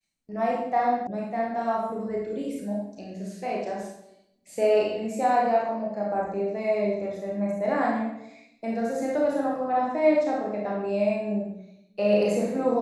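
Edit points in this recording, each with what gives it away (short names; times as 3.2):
1.07 sound cut off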